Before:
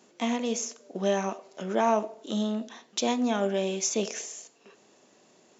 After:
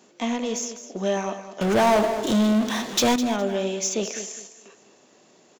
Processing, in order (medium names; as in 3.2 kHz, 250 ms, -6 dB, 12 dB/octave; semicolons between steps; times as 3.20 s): in parallel at -5.5 dB: saturation -29.5 dBFS, distortion -7 dB; 1.61–3.16 s: on the sum: power-law waveshaper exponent 0.5; feedback delay 206 ms, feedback 26%, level -12 dB